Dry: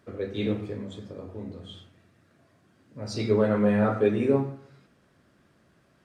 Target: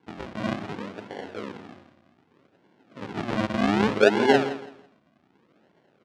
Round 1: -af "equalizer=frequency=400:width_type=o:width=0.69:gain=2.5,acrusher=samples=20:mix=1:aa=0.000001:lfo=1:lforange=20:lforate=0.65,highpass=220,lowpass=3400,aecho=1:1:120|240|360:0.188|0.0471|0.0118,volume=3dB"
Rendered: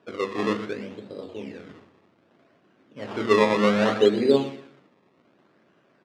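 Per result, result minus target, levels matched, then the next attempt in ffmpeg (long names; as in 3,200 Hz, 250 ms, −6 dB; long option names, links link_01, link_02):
sample-and-hold swept by an LFO: distortion −16 dB; echo 45 ms early
-af "equalizer=frequency=400:width_type=o:width=0.69:gain=2.5,acrusher=samples=69:mix=1:aa=0.000001:lfo=1:lforange=69:lforate=0.65,highpass=220,lowpass=3400,aecho=1:1:120|240|360:0.188|0.0471|0.0118,volume=3dB"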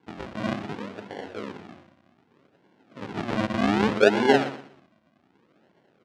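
echo 45 ms early
-af "equalizer=frequency=400:width_type=o:width=0.69:gain=2.5,acrusher=samples=69:mix=1:aa=0.000001:lfo=1:lforange=69:lforate=0.65,highpass=220,lowpass=3400,aecho=1:1:165|330|495:0.188|0.0471|0.0118,volume=3dB"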